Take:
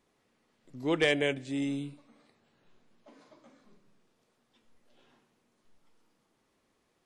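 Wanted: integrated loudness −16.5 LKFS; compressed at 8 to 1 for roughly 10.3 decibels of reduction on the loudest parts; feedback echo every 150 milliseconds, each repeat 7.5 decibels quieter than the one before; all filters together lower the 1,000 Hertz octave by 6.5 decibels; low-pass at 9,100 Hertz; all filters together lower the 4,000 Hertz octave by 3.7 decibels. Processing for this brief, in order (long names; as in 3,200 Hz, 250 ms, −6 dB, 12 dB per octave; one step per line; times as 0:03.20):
low-pass filter 9,100 Hz
parametric band 1,000 Hz −9 dB
parametric band 4,000 Hz −4.5 dB
downward compressor 8 to 1, threshold −34 dBFS
repeating echo 150 ms, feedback 42%, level −7.5 dB
level +22.5 dB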